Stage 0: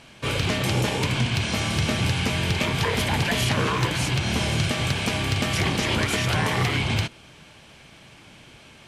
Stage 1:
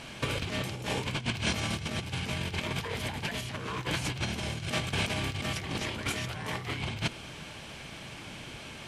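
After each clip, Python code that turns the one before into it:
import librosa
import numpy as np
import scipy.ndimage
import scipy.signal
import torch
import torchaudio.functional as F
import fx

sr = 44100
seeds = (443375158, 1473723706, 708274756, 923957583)

y = fx.over_compress(x, sr, threshold_db=-29.0, ratio=-0.5)
y = y * 10.0 ** (-2.5 / 20.0)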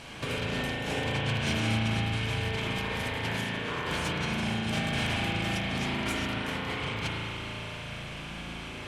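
y = 10.0 ** (-24.0 / 20.0) * np.tanh(x / 10.0 ** (-24.0 / 20.0))
y = fx.rev_spring(y, sr, rt60_s=3.6, pass_ms=(36,), chirp_ms=65, drr_db=-5.0)
y = y * 10.0 ** (-1.5 / 20.0)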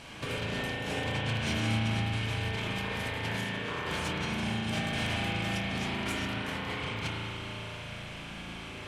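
y = fx.doubler(x, sr, ms=26.0, db=-11.0)
y = y * 10.0 ** (-2.5 / 20.0)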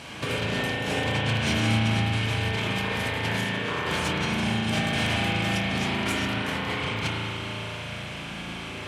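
y = scipy.signal.sosfilt(scipy.signal.butter(2, 69.0, 'highpass', fs=sr, output='sos'), x)
y = y * 10.0 ** (6.5 / 20.0)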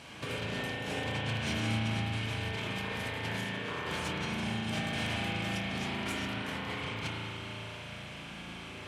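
y = x + 10.0 ** (-21.5 / 20.0) * np.pad(x, (int(688 * sr / 1000.0), 0))[:len(x)]
y = y * 10.0 ** (-8.5 / 20.0)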